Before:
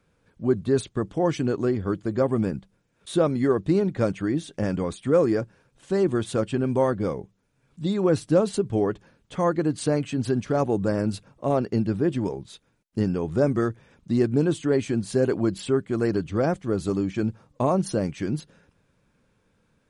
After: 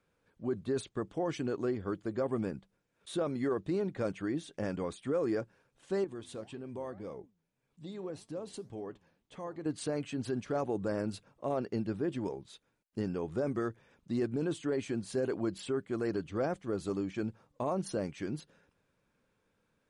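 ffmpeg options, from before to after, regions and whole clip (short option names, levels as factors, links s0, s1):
-filter_complex "[0:a]asettb=1/sr,asplit=3[s0][s1][s2];[s0]atrim=end=6.044[s3];[s1]atrim=start=6.04:end=9.66,asetpts=PTS-STARTPTS,afade=t=in:d=0.004:c=qsin,afade=t=out:st=3.616:d=0.004:c=qsin,equalizer=f=1400:w=5.2:g=-5.5,acompressor=threshold=0.0501:ratio=2.5:attack=3.2:release=140:knee=1:detection=peak,flanger=delay=4.4:depth=8:regen=88:speed=1.8:shape=sinusoidal[s4];[s2]atrim=start=9.656[s5];[s3][s4]acrossfade=d=0.004:c1=hsin:c2=qsin[s6];[s6][s5]acrossfade=d=0.004:c1=qsin:c2=hsin,bass=f=250:g=-6,treble=f=4000:g=-2,alimiter=limit=0.141:level=0:latency=1:release=11,volume=0.447"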